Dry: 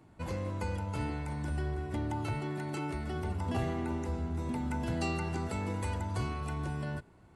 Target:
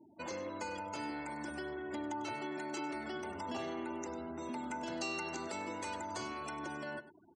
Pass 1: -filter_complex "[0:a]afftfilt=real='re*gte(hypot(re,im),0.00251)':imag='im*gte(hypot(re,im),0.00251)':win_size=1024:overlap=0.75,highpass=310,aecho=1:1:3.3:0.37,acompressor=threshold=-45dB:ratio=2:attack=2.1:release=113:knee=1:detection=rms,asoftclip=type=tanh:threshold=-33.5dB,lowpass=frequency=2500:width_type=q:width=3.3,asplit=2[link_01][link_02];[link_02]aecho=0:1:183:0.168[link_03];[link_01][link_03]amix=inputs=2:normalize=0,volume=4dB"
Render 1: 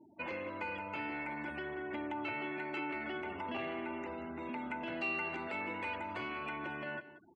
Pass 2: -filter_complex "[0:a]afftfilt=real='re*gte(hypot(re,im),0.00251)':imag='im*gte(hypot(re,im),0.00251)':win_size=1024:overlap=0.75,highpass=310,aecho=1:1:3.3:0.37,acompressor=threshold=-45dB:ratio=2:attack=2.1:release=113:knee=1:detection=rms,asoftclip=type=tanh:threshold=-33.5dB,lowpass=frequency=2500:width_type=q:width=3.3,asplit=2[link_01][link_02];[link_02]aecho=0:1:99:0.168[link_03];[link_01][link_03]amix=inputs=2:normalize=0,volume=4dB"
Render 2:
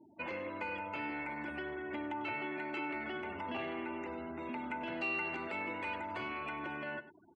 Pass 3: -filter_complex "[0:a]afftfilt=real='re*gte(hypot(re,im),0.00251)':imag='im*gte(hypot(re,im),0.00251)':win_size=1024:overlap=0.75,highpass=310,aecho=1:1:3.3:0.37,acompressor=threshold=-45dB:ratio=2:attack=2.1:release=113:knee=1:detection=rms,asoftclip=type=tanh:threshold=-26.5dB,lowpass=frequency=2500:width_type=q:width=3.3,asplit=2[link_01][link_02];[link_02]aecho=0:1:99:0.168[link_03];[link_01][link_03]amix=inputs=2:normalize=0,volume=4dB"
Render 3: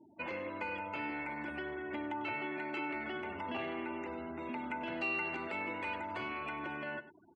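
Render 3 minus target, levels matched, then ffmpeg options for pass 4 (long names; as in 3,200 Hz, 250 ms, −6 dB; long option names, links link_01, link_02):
2,000 Hz band +3.5 dB
-filter_complex "[0:a]afftfilt=real='re*gte(hypot(re,im),0.00251)':imag='im*gte(hypot(re,im),0.00251)':win_size=1024:overlap=0.75,highpass=310,aecho=1:1:3.3:0.37,acompressor=threshold=-45dB:ratio=2:attack=2.1:release=113:knee=1:detection=rms,asoftclip=type=tanh:threshold=-26.5dB,lowpass=frequency=6300:width_type=q:width=3.3,asplit=2[link_01][link_02];[link_02]aecho=0:1:99:0.168[link_03];[link_01][link_03]amix=inputs=2:normalize=0,volume=4dB"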